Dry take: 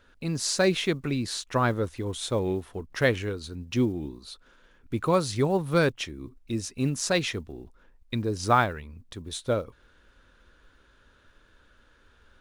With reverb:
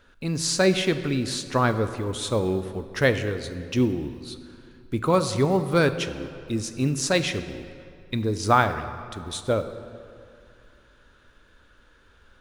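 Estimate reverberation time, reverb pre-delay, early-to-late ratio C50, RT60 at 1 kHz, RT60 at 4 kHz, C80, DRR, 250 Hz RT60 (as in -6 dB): 2.5 s, 22 ms, 11.0 dB, 2.5 s, 1.6 s, 12.0 dB, 10.0 dB, 2.4 s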